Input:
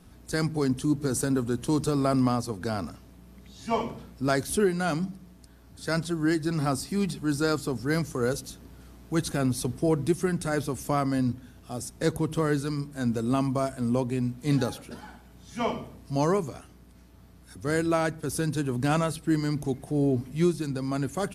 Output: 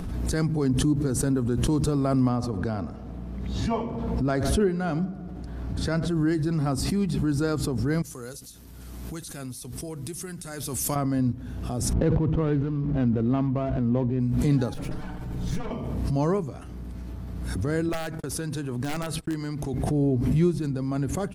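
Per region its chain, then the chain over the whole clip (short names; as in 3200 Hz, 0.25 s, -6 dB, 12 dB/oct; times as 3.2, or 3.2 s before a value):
2.29–6.08 high shelf 7400 Hz -11.5 dB + darkening echo 77 ms, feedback 69%, low-pass 2400 Hz, level -17 dB
8.02–10.96 pre-emphasis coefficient 0.9 + overloaded stage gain 24.5 dB + mismatched tape noise reduction decoder only
11.93–14.2 median filter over 25 samples + LPF 4000 Hz + sustainer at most 38 dB/s
14.74–15.71 minimum comb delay 6.6 ms + low shelf 230 Hz +8.5 dB + compressor, threshold -33 dBFS
17.89–19.74 gate -40 dBFS, range -48 dB + low shelf 460 Hz -9 dB + wrapped overs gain 20 dB
whole clip: upward compressor, threshold -27 dBFS; tilt -2 dB/oct; backwards sustainer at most 26 dB/s; gain -3 dB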